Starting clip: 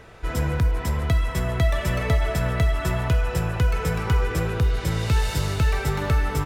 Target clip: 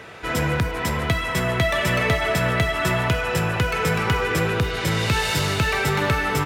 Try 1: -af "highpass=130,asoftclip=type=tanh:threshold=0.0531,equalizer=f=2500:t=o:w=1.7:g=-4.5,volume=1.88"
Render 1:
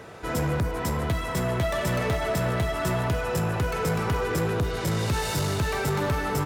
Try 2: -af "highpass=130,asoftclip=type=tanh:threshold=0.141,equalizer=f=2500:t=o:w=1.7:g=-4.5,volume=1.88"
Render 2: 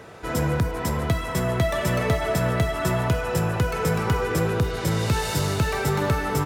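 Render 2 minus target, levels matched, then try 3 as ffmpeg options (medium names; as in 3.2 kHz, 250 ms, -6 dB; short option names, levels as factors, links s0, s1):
2 kHz band -5.0 dB
-af "highpass=130,asoftclip=type=tanh:threshold=0.141,equalizer=f=2500:t=o:w=1.7:g=5,volume=1.88"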